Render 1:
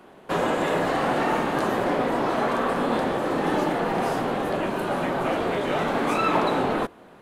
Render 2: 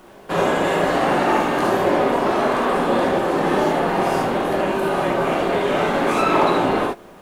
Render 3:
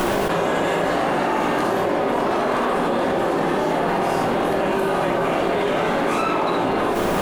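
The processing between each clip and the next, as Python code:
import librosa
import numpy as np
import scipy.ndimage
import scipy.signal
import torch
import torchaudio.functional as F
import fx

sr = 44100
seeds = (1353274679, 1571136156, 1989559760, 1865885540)

y1 = fx.rev_gated(x, sr, seeds[0], gate_ms=90, shape='rising', drr_db=-1.5)
y1 = fx.dmg_noise_colour(y1, sr, seeds[1], colour='pink', level_db=-58.0)
y1 = y1 * librosa.db_to_amplitude(1.5)
y2 = fx.env_flatten(y1, sr, amount_pct=100)
y2 = y2 * librosa.db_to_amplitude(-6.0)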